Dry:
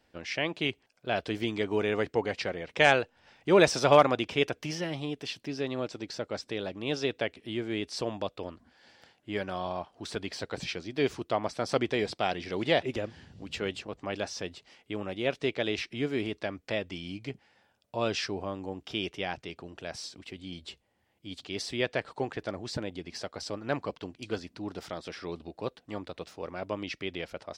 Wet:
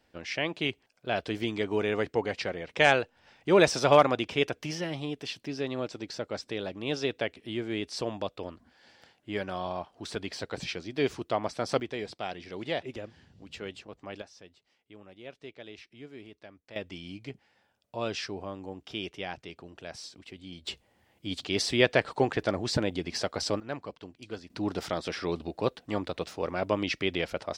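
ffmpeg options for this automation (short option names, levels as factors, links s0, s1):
-af "asetnsamples=n=441:p=0,asendcmd='11.8 volume volume -6.5dB;14.22 volume volume -15.5dB;16.76 volume volume -3dB;20.67 volume volume 7dB;23.6 volume volume -5.5dB;24.5 volume volume 6.5dB',volume=1"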